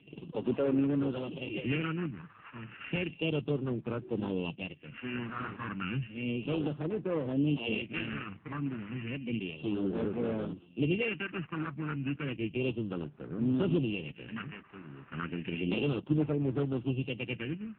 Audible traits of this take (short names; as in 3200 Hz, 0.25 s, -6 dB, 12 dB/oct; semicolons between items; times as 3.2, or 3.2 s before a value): a buzz of ramps at a fixed pitch in blocks of 16 samples; phasing stages 4, 0.32 Hz, lowest notch 510–2800 Hz; AMR-NB